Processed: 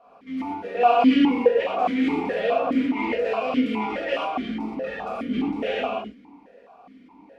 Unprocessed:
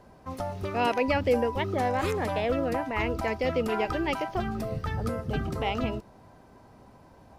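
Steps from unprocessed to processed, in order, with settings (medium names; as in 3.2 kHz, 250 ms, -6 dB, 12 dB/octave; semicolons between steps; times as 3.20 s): comb filter that takes the minimum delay 4.2 ms; gated-style reverb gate 150 ms flat, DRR -6.5 dB; stepped vowel filter 4.8 Hz; trim +9 dB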